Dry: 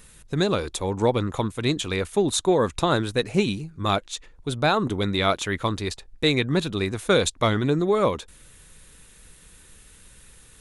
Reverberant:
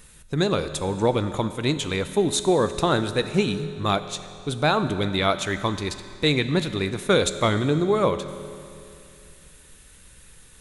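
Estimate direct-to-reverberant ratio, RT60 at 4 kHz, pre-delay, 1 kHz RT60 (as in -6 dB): 10.5 dB, 2.4 s, 5 ms, 2.6 s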